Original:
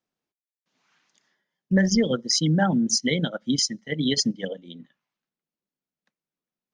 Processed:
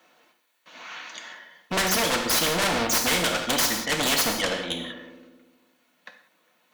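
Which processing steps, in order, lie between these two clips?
wavefolder on the positive side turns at −22 dBFS
high-pass filter 300 Hz 6 dB per octave
parametric band 7,500 Hz −7 dB 1.6 octaves
notch filter 5,100 Hz, Q 7.9
notch comb filter 400 Hz
mid-hump overdrive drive 25 dB, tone 4,800 Hz, clips at −15 dBFS
on a send: feedback echo with a low-pass in the loop 67 ms, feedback 74%, low-pass 1,800 Hz, level −19.5 dB
on the sum: reverb whose tail is shaped and stops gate 210 ms falling, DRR 4 dB
every bin compressed towards the loudest bin 2 to 1

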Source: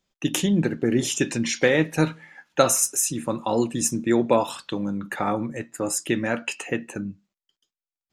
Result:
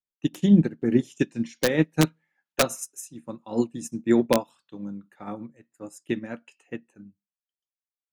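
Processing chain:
wrap-around overflow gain 7.5 dB
dynamic equaliser 210 Hz, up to +7 dB, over −34 dBFS, Q 0.76
expander for the loud parts 2.5 to 1, over −29 dBFS

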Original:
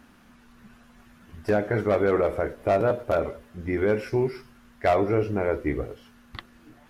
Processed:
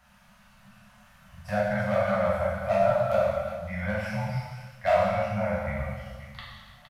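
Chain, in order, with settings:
delay that plays each chunk backwards 331 ms, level −12 dB
Chebyshev band-stop filter 220–540 Hz, order 5
double-tracking delay 38 ms −11 dB
reverb whose tail is shaped and stops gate 440 ms falling, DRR −6 dB
level −6 dB

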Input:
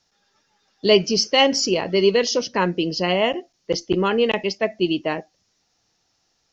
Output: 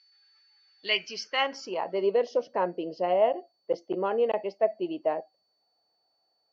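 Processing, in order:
steady tone 4,500 Hz −48 dBFS
band-pass filter sweep 2,100 Hz → 650 Hz, 0:01.03–0:02.08

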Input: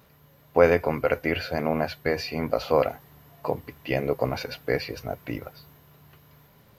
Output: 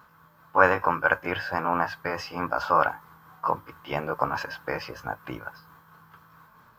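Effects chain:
pitch shift by two crossfaded delay taps +1.5 semitones
flat-topped bell 1,200 Hz +15.5 dB 1.1 octaves
level −4 dB

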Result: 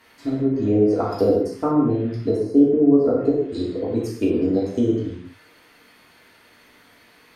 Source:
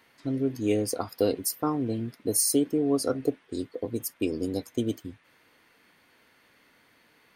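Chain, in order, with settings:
treble cut that deepens with the level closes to 770 Hz, closed at −22 dBFS
reverb whose tail is shaped and stops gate 250 ms falling, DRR −5 dB
level +3 dB

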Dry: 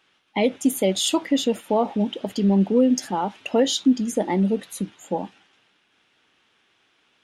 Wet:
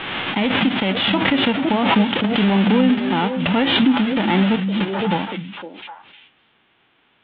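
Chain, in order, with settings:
spectral envelope flattened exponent 0.3
Butterworth low-pass 3,500 Hz 72 dB per octave
brickwall limiter −15.5 dBFS, peak gain reduction 9 dB
echo through a band-pass that steps 255 ms, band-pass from 160 Hz, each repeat 1.4 octaves, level −5 dB
background raised ahead of every attack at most 31 dB per second
level +6.5 dB

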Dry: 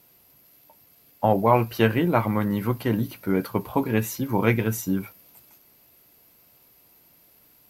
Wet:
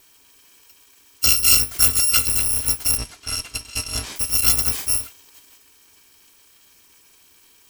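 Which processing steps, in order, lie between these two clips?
samples in bit-reversed order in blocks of 256 samples
0:01.27–0:02.37: parametric band 790 Hz −8.5 dB 0.34 octaves
0:02.97–0:04.16: low-pass filter 7,100 Hz 12 dB per octave
level +3.5 dB

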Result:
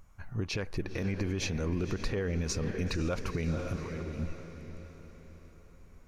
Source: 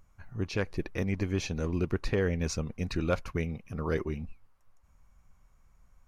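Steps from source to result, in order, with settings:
0:03.76–0:04.19: output level in coarse steps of 23 dB
feedback delay with all-pass diffusion 504 ms, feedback 48%, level −12 dB
brickwall limiter −26.5 dBFS, peak gain reduction 10.5 dB
level +4 dB

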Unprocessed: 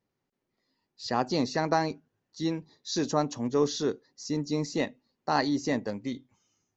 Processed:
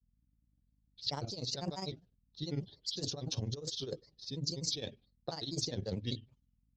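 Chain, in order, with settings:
noise gate with hold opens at −56 dBFS
low-pass that shuts in the quiet parts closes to 1,700 Hz, open at −24 dBFS
octave-band graphic EQ 125/250/500/1,000/2,000/4,000 Hz +9/−11/+3/−10/−11/+11 dB
compressor whose output falls as the input rises −36 dBFS, ratio −1
mains hum 50 Hz, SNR 33 dB
granular cloud 71 ms, grains 20 per second, spray 10 ms, pitch spread up and down by 3 semitones

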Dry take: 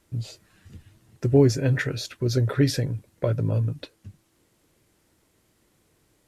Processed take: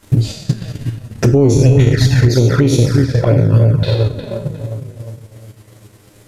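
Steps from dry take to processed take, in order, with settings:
peak hold with a decay on every bin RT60 0.80 s
feedback echo with a low-pass in the loop 357 ms, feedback 47%, low-pass 1,600 Hz, level −6.5 dB
flanger swept by the level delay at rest 10 ms, full sweep at −16 dBFS
transient designer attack +10 dB, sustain −6 dB
0:01.54–0:02.29: low-shelf EQ 120 Hz +11.5 dB
downward compressor 2 to 1, threshold −27 dBFS, peak gain reduction 11.5 dB
boost into a limiter +19.5 dB
level −1 dB

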